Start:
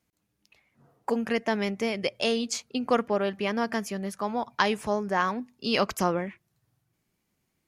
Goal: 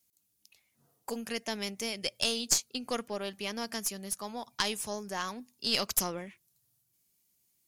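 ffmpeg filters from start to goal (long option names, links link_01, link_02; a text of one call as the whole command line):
ffmpeg -i in.wav -filter_complex "[0:a]acrossover=split=2400[link_01][link_02];[link_02]crystalizer=i=7.5:c=0[link_03];[link_01][link_03]amix=inputs=2:normalize=0,aeval=exprs='(tanh(1.41*val(0)+0.65)-tanh(0.65))/1.41':channel_layout=same,volume=-7dB" out.wav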